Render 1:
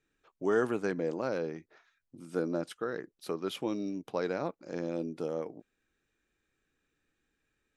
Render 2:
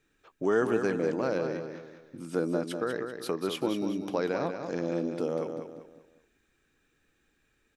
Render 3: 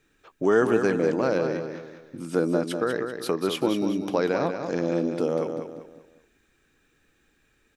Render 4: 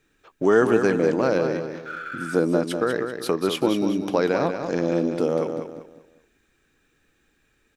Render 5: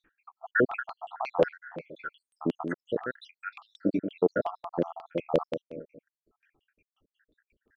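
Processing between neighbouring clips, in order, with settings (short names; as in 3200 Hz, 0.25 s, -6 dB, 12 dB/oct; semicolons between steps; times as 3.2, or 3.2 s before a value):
in parallel at +2 dB: compressor, threshold -39 dBFS, peak gain reduction 15 dB; on the sum: feedback echo 0.194 s, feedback 36%, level -7 dB
de-esser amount 70%; gain +5.5 dB
spectral repair 1.89–2.34, 1200–3500 Hz after; in parallel at -8 dB: crossover distortion -42 dBFS
random spectral dropouts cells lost 81%; LFO low-pass saw down 5.6 Hz 580–3100 Hz; gain -2 dB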